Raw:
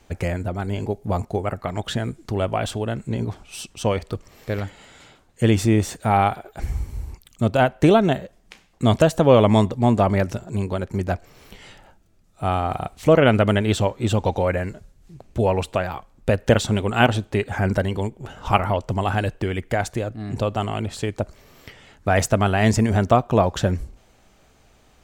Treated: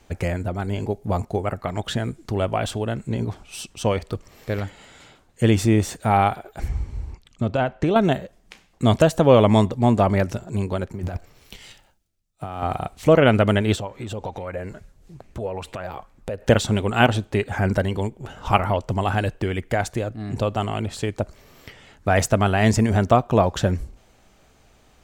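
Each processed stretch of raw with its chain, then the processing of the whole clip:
6.68–7.96 air absorption 85 m + compressor 5:1, threshold -16 dBFS
10.93–12.63 G.711 law mismatch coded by A + negative-ratio compressor -30 dBFS + three-band expander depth 70%
13.75–16.47 compressor, threshold -29 dBFS + LFO bell 2.3 Hz 440–2200 Hz +8 dB
whole clip: dry

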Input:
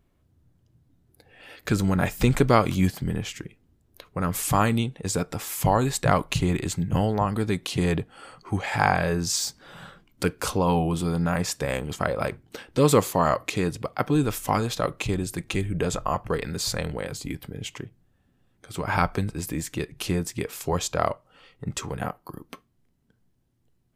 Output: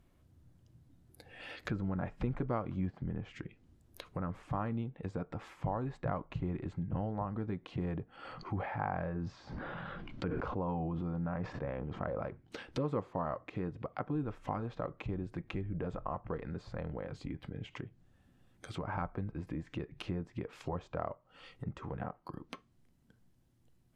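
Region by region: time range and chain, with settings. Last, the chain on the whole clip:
8.16–12.21 air absorption 130 m + sustainer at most 20 dB/s
whole clip: compressor 2:1, threshold -43 dBFS; notch 420 Hz, Q 12; treble ducked by the level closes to 1300 Hz, closed at -36 dBFS

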